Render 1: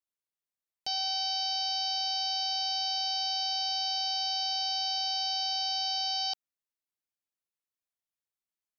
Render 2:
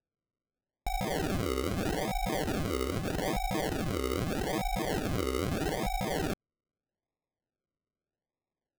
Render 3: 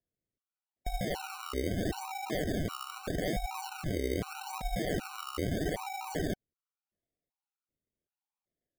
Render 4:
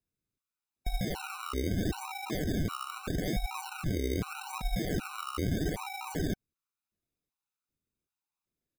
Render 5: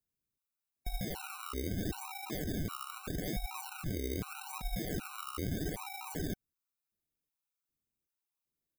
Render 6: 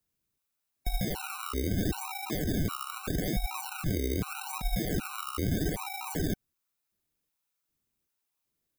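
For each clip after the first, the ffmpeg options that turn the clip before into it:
ffmpeg -i in.wav -af "acrusher=samples=41:mix=1:aa=0.000001:lfo=1:lforange=24.6:lforate=0.8" out.wav
ffmpeg -i in.wav -af "afftfilt=real='re*gt(sin(2*PI*1.3*pts/sr)*(1-2*mod(floor(b*sr/1024/760),2)),0)':imag='im*gt(sin(2*PI*1.3*pts/sr)*(1-2*mod(floor(b*sr/1024/760),2)),0)':win_size=1024:overlap=0.75" out.wav
ffmpeg -i in.wav -af "aecho=1:1:0.8:0.52" out.wav
ffmpeg -i in.wav -af "highshelf=frequency=9800:gain=10.5,volume=-5.5dB" out.wav
ffmpeg -i in.wav -filter_complex "[0:a]acrossover=split=330[link_01][link_02];[link_02]acompressor=threshold=-38dB:ratio=6[link_03];[link_01][link_03]amix=inputs=2:normalize=0,volume=7dB" out.wav

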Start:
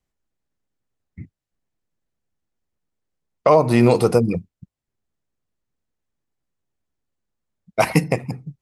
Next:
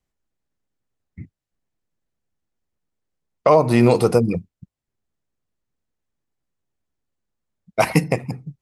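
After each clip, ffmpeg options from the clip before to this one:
ffmpeg -i in.wav -af anull out.wav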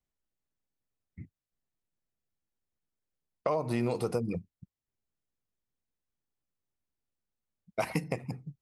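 ffmpeg -i in.wav -af "acompressor=threshold=-19dB:ratio=3,volume=-9dB" out.wav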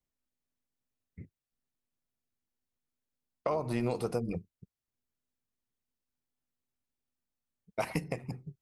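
ffmpeg -i in.wav -af "tremolo=f=250:d=0.4" out.wav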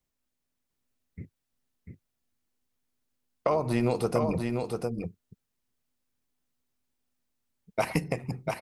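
ffmpeg -i in.wav -af "aecho=1:1:694:0.596,volume=5.5dB" out.wav

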